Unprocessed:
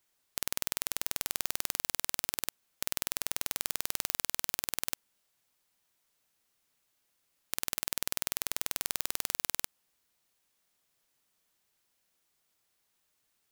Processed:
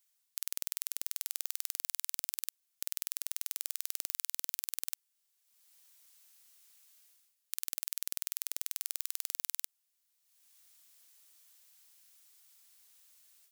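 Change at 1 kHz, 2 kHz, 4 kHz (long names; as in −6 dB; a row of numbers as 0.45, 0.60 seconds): −14.5, −10.5, −6.5 decibels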